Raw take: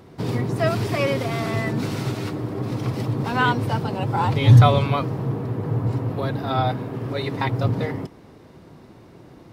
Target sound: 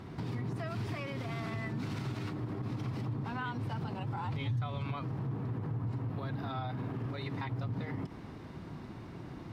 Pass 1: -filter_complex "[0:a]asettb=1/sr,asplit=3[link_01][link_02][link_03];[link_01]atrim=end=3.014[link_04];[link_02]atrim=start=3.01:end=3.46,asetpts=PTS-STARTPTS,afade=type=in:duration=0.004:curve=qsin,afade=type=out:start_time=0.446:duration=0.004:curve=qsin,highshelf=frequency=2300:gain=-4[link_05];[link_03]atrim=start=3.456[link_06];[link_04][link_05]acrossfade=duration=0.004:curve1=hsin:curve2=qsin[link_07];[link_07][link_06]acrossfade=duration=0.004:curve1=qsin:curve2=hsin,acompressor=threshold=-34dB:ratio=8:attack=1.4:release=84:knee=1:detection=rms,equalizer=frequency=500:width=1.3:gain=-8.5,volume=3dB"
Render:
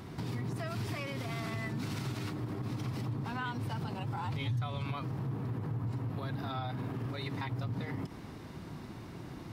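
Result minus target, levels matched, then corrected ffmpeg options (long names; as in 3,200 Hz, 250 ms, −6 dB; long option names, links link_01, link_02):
4,000 Hz band +3.5 dB
-filter_complex "[0:a]asettb=1/sr,asplit=3[link_01][link_02][link_03];[link_01]atrim=end=3.014[link_04];[link_02]atrim=start=3.01:end=3.46,asetpts=PTS-STARTPTS,afade=type=in:duration=0.004:curve=qsin,afade=type=out:start_time=0.446:duration=0.004:curve=qsin,highshelf=frequency=2300:gain=-4[link_05];[link_03]atrim=start=3.456[link_06];[link_04][link_05]acrossfade=duration=0.004:curve1=hsin:curve2=qsin[link_07];[link_07][link_06]acrossfade=duration=0.004:curve1=qsin:curve2=hsin,acompressor=threshold=-34dB:ratio=8:attack=1.4:release=84:knee=1:detection=rms,lowpass=frequency=3100:poles=1,equalizer=frequency=500:width=1.3:gain=-8.5,volume=3dB"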